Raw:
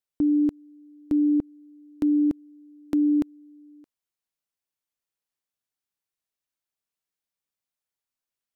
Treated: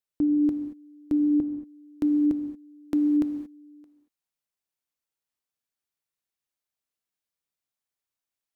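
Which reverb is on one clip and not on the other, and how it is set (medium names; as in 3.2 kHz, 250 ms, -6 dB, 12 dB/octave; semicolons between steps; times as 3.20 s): gated-style reverb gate 250 ms flat, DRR 7 dB; trim -1.5 dB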